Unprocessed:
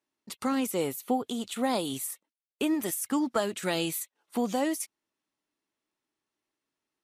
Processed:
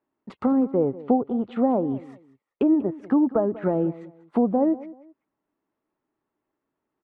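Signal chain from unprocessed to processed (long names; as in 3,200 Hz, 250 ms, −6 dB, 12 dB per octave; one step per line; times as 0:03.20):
low-pass filter 1,200 Hz 12 dB per octave
treble cut that deepens with the level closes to 710 Hz, closed at −27.5 dBFS
repeating echo 192 ms, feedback 27%, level −18 dB
level +8.5 dB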